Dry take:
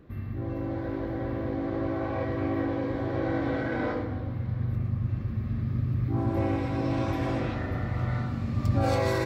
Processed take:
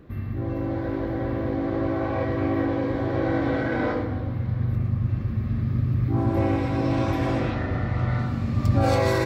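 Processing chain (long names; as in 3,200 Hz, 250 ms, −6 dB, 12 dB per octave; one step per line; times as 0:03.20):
0:07.50–0:08.19: low-pass filter 6,700 Hz 12 dB per octave
level +4.5 dB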